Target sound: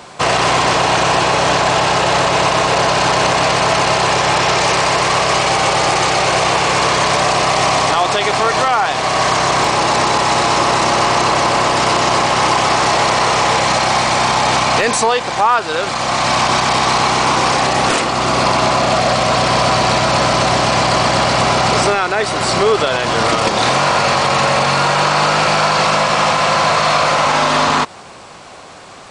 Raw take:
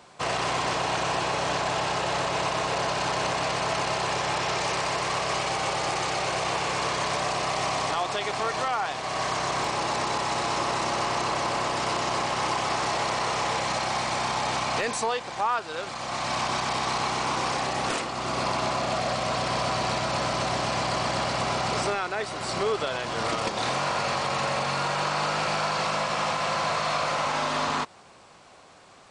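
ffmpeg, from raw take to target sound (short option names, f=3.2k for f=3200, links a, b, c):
-filter_complex "[0:a]asplit=2[a][b];[b]alimiter=limit=-23dB:level=0:latency=1,volume=2dB[c];[a][c]amix=inputs=2:normalize=0,volume=8.5dB"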